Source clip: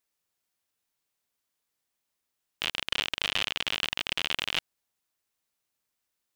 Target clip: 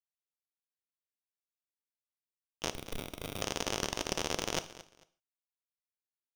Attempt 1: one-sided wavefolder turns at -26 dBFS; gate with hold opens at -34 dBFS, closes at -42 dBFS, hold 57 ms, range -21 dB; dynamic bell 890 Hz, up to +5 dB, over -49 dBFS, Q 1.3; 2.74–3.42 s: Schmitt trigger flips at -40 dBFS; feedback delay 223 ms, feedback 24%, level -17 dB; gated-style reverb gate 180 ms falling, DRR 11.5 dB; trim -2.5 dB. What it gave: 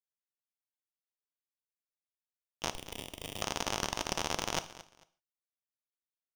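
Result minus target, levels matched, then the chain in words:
1 kHz band +3.0 dB
one-sided wavefolder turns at -26 dBFS; gate with hold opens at -34 dBFS, closes at -42 dBFS, hold 57 ms, range -21 dB; dynamic bell 440 Hz, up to +5 dB, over -49 dBFS, Q 1.3; 2.74–3.42 s: Schmitt trigger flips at -40 dBFS; feedback delay 223 ms, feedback 24%, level -17 dB; gated-style reverb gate 180 ms falling, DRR 11.5 dB; trim -2.5 dB

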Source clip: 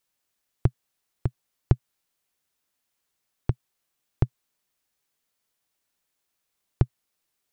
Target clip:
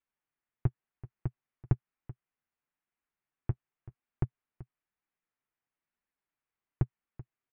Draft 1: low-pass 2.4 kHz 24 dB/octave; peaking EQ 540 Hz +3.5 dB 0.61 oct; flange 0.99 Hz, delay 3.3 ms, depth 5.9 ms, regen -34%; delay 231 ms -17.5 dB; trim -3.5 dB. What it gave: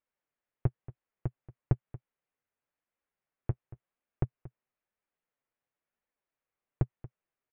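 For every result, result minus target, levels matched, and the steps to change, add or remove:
echo 152 ms early; 500 Hz band +3.5 dB
change: delay 383 ms -17.5 dB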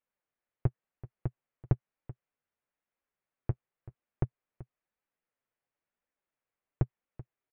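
500 Hz band +3.5 dB
change: peaking EQ 540 Hz -5 dB 0.61 oct

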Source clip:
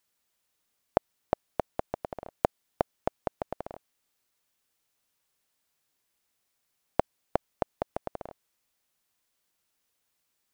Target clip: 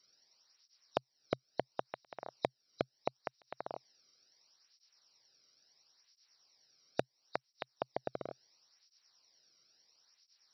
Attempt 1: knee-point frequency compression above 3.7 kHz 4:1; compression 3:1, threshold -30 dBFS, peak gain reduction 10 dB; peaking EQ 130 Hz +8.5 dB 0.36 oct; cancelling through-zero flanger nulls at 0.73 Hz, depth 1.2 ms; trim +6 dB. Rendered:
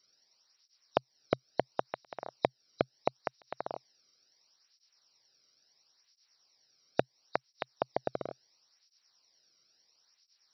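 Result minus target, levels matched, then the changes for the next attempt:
compression: peak gain reduction -6 dB
change: compression 3:1, threshold -39 dBFS, peak gain reduction 16 dB

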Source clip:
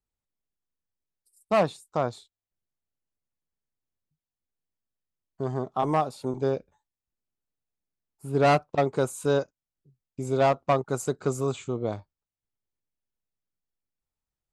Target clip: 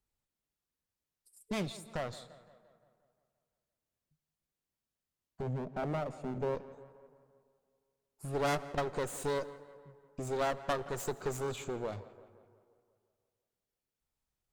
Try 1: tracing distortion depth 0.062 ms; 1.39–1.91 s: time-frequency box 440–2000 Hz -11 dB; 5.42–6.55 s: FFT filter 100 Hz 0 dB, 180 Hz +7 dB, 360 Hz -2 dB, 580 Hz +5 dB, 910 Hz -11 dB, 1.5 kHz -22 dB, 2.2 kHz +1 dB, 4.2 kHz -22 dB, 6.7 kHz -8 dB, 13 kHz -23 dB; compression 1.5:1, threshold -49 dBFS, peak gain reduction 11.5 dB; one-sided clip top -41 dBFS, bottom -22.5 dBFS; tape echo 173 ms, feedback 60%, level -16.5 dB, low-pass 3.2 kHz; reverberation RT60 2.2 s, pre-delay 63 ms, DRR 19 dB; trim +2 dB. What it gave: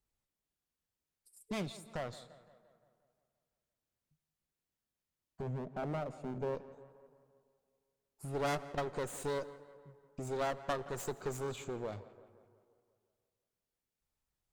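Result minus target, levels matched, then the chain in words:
compression: peak gain reduction +3.5 dB
tracing distortion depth 0.062 ms; 1.39–1.91 s: time-frequency box 440–2000 Hz -11 dB; 5.42–6.55 s: FFT filter 100 Hz 0 dB, 180 Hz +7 dB, 360 Hz -2 dB, 580 Hz +5 dB, 910 Hz -11 dB, 1.5 kHz -22 dB, 2.2 kHz +1 dB, 4.2 kHz -22 dB, 6.7 kHz -8 dB, 13 kHz -23 dB; compression 1.5:1, threshold -38.5 dBFS, peak gain reduction 8 dB; one-sided clip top -41 dBFS, bottom -22.5 dBFS; tape echo 173 ms, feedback 60%, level -16.5 dB, low-pass 3.2 kHz; reverberation RT60 2.2 s, pre-delay 63 ms, DRR 19 dB; trim +2 dB

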